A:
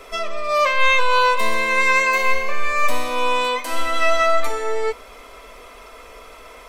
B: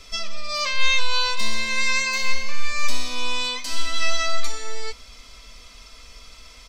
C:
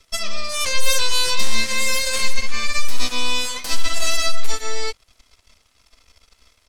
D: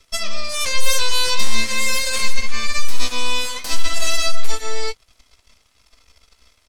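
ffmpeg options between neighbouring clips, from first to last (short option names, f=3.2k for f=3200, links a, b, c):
-af "firequalizer=gain_entry='entry(160,0);entry(380,-19);entry(4800,6);entry(11000,-11)':delay=0.05:min_phase=1,volume=3dB"
-filter_complex "[0:a]aeval=exprs='0.531*(cos(1*acos(clip(val(0)/0.531,-1,1)))-cos(1*PI/2))+0.188*(cos(2*acos(clip(val(0)/0.531,-1,1)))-cos(2*PI/2))+0.15*(cos(3*acos(clip(val(0)/0.531,-1,1)))-cos(3*PI/2))+0.188*(cos(4*acos(clip(val(0)/0.531,-1,1)))-cos(4*PI/2))+0.168*(cos(8*acos(clip(val(0)/0.531,-1,1)))-cos(8*PI/2))':c=same,acrossover=split=430|3000[a][b][c];[b]acompressor=threshold=-27dB:ratio=2.5[d];[a][d][c]amix=inputs=3:normalize=0,volume=-1.5dB"
-filter_complex "[0:a]asplit=2[a][b];[b]adelay=18,volume=-12dB[c];[a][c]amix=inputs=2:normalize=0"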